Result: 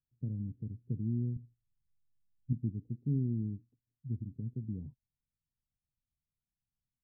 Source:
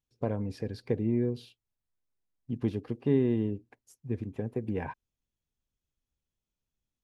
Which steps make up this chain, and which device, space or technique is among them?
the neighbour's flat through the wall (LPF 260 Hz 24 dB/oct; bell 130 Hz +7 dB 0.77 oct); 1.36–2.53 tilt -2.5 dB/oct; gain -6.5 dB

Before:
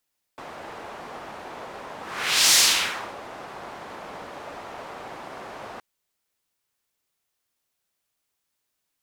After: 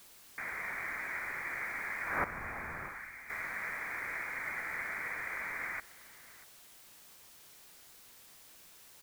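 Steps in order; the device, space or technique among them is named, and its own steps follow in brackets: scrambled radio voice (BPF 310–2900 Hz; inverted band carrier 2700 Hz; white noise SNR 20 dB); 2.24–3.3 passive tone stack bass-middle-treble 5-5-5; outdoor echo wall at 110 m, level -18 dB

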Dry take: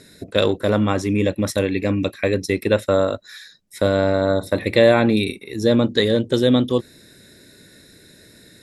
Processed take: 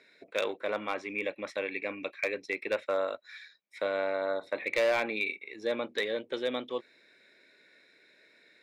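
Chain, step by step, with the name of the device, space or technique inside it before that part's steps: megaphone (BPF 560–3000 Hz; bell 2300 Hz +12 dB 0.25 oct; hard clip -12 dBFS, distortion -17 dB); 3.04–3.84 high shelf 4600 Hz +5.5 dB; gain -9 dB

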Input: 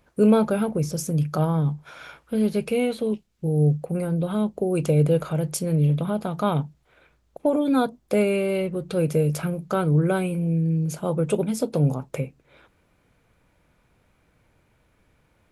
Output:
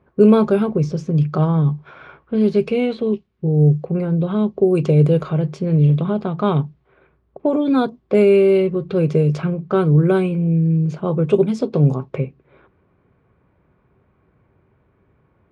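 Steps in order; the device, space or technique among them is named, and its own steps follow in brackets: HPF 71 Hz; inside a cardboard box (LPF 3100 Hz 12 dB/oct; small resonant body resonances 390/1100 Hz, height 11 dB, ringing for 85 ms); low-pass opened by the level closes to 1600 Hz, open at -13 dBFS; tone controls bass +5 dB, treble +13 dB; gain +2 dB

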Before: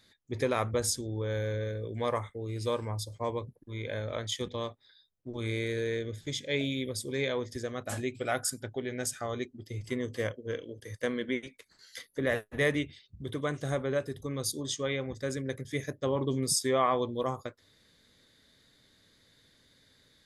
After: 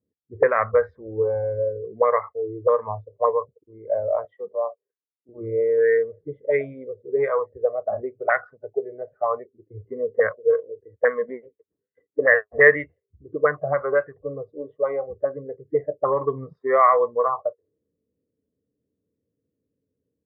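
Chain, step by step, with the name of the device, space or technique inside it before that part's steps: band shelf 570 Hz +8 dB 1 oct; spectral noise reduction 14 dB; envelope filter bass rig (envelope low-pass 270–1700 Hz up, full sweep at -22.5 dBFS; speaker cabinet 77–2200 Hz, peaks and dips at 80 Hz +6 dB, 250 Hz -8 dB, 450 Hz +8 dB, 730 Hz -4 dB, 1100 Hz +9 dB, 1900 Hz +10 dB); 4.25–5.29 weighting filter A

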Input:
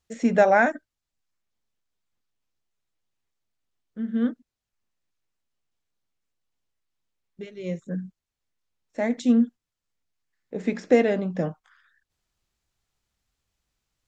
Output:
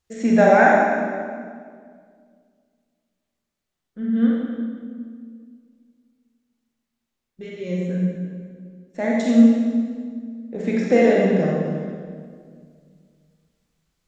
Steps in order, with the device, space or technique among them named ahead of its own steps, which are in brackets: stairwell (reverb RT60 2.0 s, pre-delay 31 ms, DRR -4 dB)

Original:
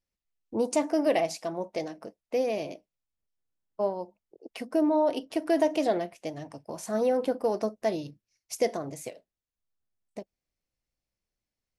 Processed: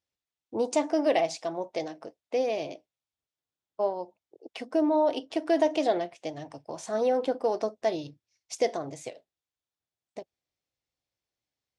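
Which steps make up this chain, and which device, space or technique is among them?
car door speaker (speaker cabinet 90–8200 Hz, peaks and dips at 200 Hz -9 dB, 780 Hz +3 dB, 3500 Hz +5 dB)

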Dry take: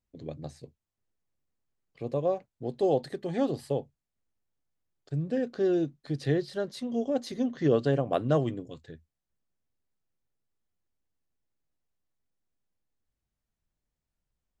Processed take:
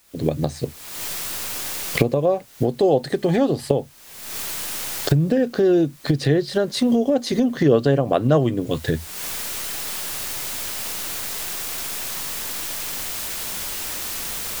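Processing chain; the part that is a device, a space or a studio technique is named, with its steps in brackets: cheap recorder with automatic gain (white noise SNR 34 dB; recorder AGC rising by 49 dB/s); gain +8 dB

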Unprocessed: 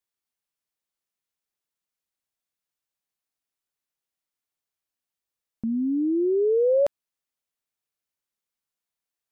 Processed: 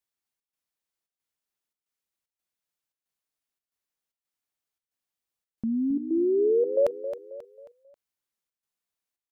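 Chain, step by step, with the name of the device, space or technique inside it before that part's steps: trance gate with a delay (step gate "xxx.xxxx.xxxx." 113 bpm -12 dB; feedback echo 0.269 s, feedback 40%, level -11 dB); gain -1 dB

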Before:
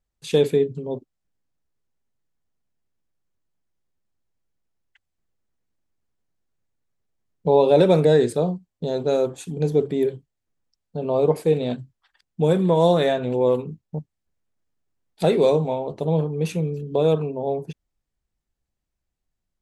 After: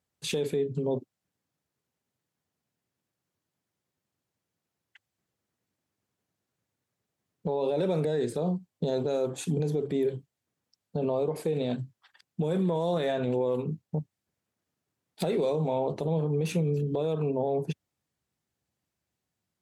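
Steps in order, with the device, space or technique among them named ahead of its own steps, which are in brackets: podcast mastering chain (HPF 90 Hz 24 dB/oct; de-esser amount 75%; compressor 4:1, threshold -24 dBFS, peak gain reduction 11 dB; limiter -23 dBFS, peak gain reduction 10 dB; gain +3.5 dB; MP3 96 kbps 48000 Hz)

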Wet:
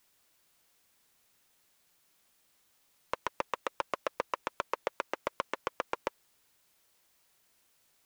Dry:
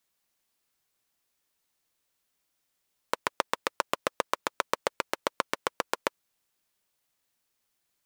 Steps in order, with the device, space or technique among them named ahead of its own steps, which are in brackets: tape answering machine (BPF 350–3100 Hz; soft clip -18 dBFS, distortion -10 dB; wow and flutter; white noise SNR 28 dB)

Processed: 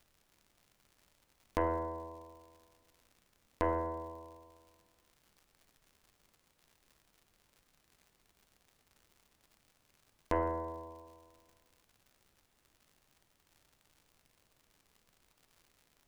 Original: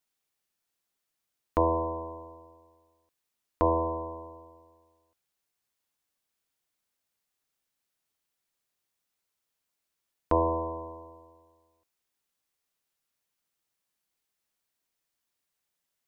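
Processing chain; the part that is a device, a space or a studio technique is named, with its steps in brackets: record under a worn stylus (tracing distortion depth 0.19 ms; crackle 110/s -44 dBFS; pink noise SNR 30 dB); gain -7.5 dB

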